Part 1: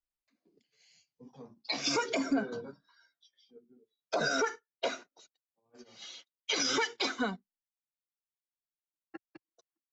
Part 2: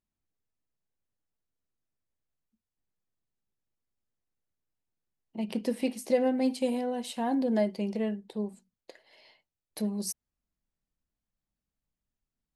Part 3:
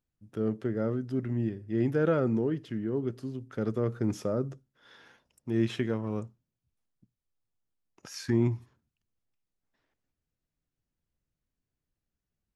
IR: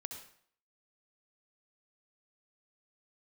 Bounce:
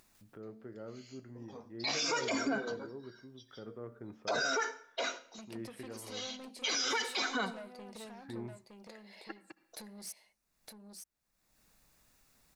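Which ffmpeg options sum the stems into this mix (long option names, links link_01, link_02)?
-filter_complex "[0:a]adelay=150,volume=3dB,asplit=2[link_01][link_02];[link_02]volume=-8dB[link_03];[1:a]bandreject=frequency=3100:width=7.2,acompressor=threshold=-37dB:ratio=6,asoftclip=type=tanh:threshold=-39.5dB,volume=0dB,asplit=3[link_04][link_05][link_06];[link_05]volume=-19dB[link_07];[link_06]volume=-5.5dB[link_08];[2:a]lowpass=1600,bandreject=frequency=73.58:width_type=h:width=4,bandreject=frequency=147.16:width_type=h:width=4,bandreject=frequency=220.74:width_type=h:width=4,bandreject=frequency=294.32:width_type=h:width=4,bandreject=frequency=367.9:width_type=h:width=4,bandreject=frequency=441.48:width_type=h:width=4,bandreject=frequency=515.06:width_type=h:width=4,bandreject=frequency=588.64:width_type=h:width=4,bandreject=frequency=662.22:width_type=h:width=4,bandreject=frequency=735.8:width_type=h:width=4,bandreject=frequency=809.38:width_type=h:width=4,bandreject=frequency=882.96:width_type=h:width=4,bandreject=frequency=956.54:width_type=h:width=4,bandreject=frequency=1030.12:width_type=h:width=4,bandreject=frequency=1103.7:width_type=h:width=4,bandreject=frequency=1177.28:width_type=h:width=4,bandreject=frequency=1250.86:width_type=h:width=4,bandreject=frequency=1324.44:width_type=h:width=4,bandreject=frequency=1398.02:width_type=h:width=4,bandreject=frequency=1471.6:width_type=h:width=4,bandreject=frequency=1545.18:width_type=h:width=4,bandreject=frequency=1618.76:width_type=h:width=4,bandreject=frequency=1692.34:width_type=h:width=4,bandreject=frequency=1765.92:width_type=h:width=4,bandreject=frequency=1839.5:width_type=h:width=4,bandreject=frequency=1913.08:width_type=h:width=4,bandreject=frequency=1986.66:width_type=h:width=4,bandreject=frequency=2060.24:width_type=h:width=4,bandreject=frequency=2133.82:width_type=h:width=4,bandreject=frequency=2207.4:width_type=h:width=4,bandreject=frequency=2280.98:width_type=h:width=4,bandreject=frequency=2354.56:width_type=h:width=4,volume=-10dB[link_09];[3:a]atrim=start_sample=2205[link_10];[link_03][link_07]amix=inputs=2:normalize=0[link_11];[link_11][link_10]afir=irnorm=-1:irlink=0[link_12];[link_08]aecho=0:1:914:1[link_13];[link_01][link_04][link_09][link_12][link_13]amix=inputs=5:normalize=0,lowshelf=frequency=360:gain=-11.5,acompressor=mode=upward:threshold=-48dB:ratio=2.5,alimiter=level_in=0.5dB:limit=-24dB:level=0:latency=1:release=16,volume=-0.5dB"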